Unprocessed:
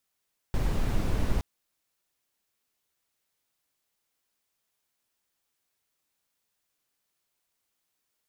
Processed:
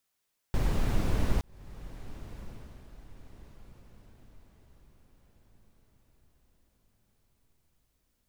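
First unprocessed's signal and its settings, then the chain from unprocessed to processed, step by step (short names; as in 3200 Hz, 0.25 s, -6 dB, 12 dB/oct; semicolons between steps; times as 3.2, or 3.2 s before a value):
noise brown, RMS -25 dBFS 0.87 s
diffused feedback echo 1.215 s, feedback 44%, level -15.5 dB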